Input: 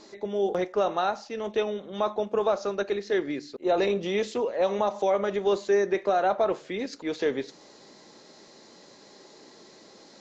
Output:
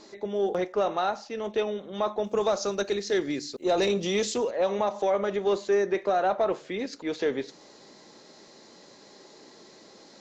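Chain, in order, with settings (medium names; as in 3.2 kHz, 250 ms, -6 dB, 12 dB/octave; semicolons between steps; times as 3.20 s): 2.24–4.51 s: tone controls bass +4 dB, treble +14 dB; saturation -14 dBFS, distortion -25 dB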